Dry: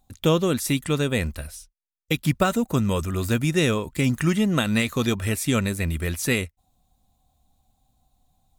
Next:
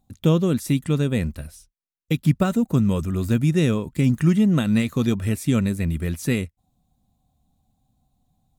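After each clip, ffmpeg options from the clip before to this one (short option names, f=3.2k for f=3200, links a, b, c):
-af "equalizer=f=170:t=o:w=2.4:g=11,volume=-6dB"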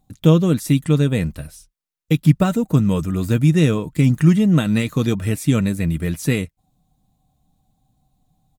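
-af "aecho=1:1:6.5:0.34,volume=3dB"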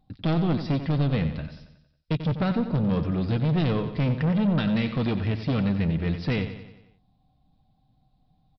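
-af "aresample=11025,asoftclip=type=tanh:threshold=-19dB,aresample=44100,aecho=1:1:91|182|273|364|455|546:0.299|0.158|0.0839|0.0444|0.0236|0.0125,volume=-1.5dB"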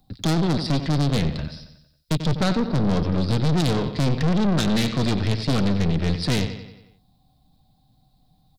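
-filter_complex "[0:a]aeval=exprs='(tanh(20*val(0)+0.75)-tanh(0.75))/20':c=same,acrossover=split=130|750[a][b][c];[c]aexciter=amount=3.9:drive=3.3:freq=3.8k[d];[a][b][d]amix=inputs=3:normalize=0,volume=8.5dB"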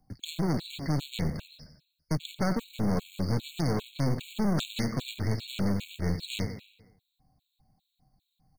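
-af "acrusher=bits=5:mode=log:mix=0:aa=0.000001,afftfilt=real='re*gt(sin(2*PI*2.5*pts/sr)*(1-2*mod(floor(b*sr/1024/2200),2)),0)':imag='im*gt(sin(2*PI*2.5*pts/sr)*(1-2*mod(floor(b*sr/1024/2200),2)),0)':win_size=1024:overlap=0.75,volume=-6dB"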